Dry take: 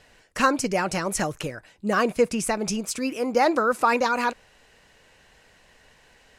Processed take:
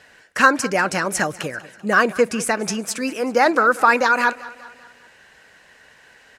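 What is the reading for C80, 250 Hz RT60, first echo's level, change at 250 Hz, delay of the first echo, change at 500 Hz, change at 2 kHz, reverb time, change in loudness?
no reverb audible, no reverb audible, −19.0 dB, +2.0 dB, 194 ms, +3.5 dB, +10.0 dB, no reverb audible, +5.5 dB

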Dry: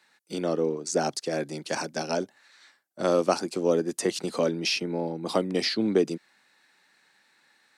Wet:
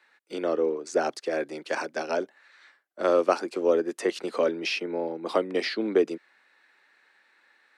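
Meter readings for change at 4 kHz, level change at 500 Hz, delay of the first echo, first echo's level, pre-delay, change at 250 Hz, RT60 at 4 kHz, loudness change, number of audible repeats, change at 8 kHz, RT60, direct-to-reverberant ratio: −5.0 dB, +1.5 dB, no echo audible, no echo audible, no reverb audible, −2.5 dB, no reverb audible, 0.0 dB, no echo audible, −9.0 dB, no reverb audible, no reverb audible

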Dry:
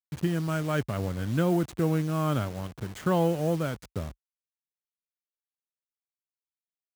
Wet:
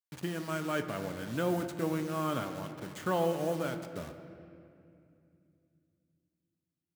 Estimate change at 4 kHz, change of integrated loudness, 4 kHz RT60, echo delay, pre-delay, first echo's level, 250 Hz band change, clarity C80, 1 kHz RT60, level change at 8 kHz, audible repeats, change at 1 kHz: −2.5 dB, −5.5 dB, 1.7 s, no echo audible, 3 ms, no echo audible, −6.5 dB, 9.5 dB, 2.3 s, −2.5 dB, no echo audible, −2.5 dB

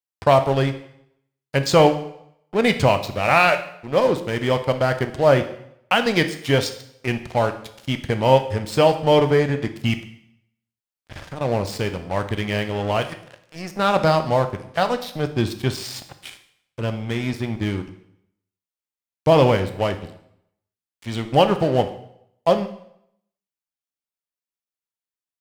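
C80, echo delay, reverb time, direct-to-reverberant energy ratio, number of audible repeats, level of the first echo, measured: 15.0 dB, no echo audible, 0.75 s, 8.5 dB, no echo audible, no echo audible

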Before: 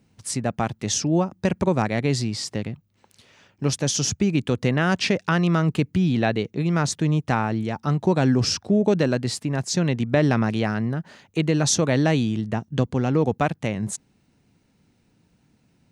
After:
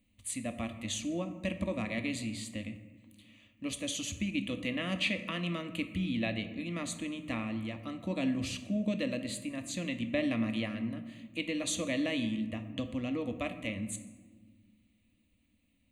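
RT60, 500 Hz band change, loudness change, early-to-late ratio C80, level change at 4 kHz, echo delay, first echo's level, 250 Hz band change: 1.5 s, −14.5 dB, −12.5 dB, 13.0 dB, −9.0 dB, no echo audible, no echo audible, −11.0 dB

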